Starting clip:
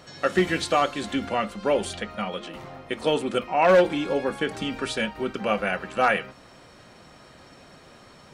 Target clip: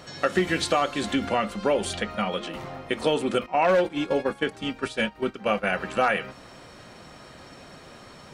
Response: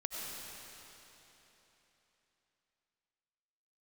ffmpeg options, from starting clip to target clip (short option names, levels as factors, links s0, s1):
-filter_complex "[0:a]acompressor=threshold=0.0631:ratio=2.5,asettb=1/sr,asplit=3[s0][s1][s2];[s0]atrim=end=3.464[s3];[s1]atrim=start=3.46:end=5.75,asetpts=PTS-STARTPTS,afade=t=in:d=0.004:c=qsin,afade=t=out:st=2.286:d=0.004:c=qsin,agate=range=0.251:threshold=0.0398:ratio=16:detection=peak[s4];[s2]atrim=start=5.746[s5];[s3][s4]acrossfade=d=0.004:c1=hsin:c2=qsin[s6];[s6][s5]acrossfade=d=0.004:c1=qsin:c2=hsin,volume=1.5"